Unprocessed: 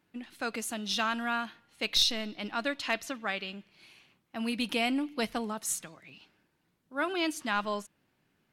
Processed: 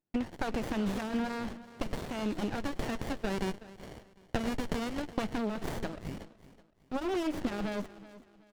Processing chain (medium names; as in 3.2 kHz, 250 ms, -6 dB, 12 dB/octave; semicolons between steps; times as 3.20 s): 2.57–5.18 s: high-pass 1.1 kHz 12 dB/octave; gate with hold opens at -55 dBFS; Bessel low-pass 4.2 kHz, order 2; waveshaping leveller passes 2; peak limiter -25.5 dBFS, peak gain reduction 9 dB; compression, threshold -36 dBFS, peak gain reduction 7.5 dB; feedback delay 375 ms, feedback 32%, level -17 dB; sliding maximum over 33 samples; trim +9 dB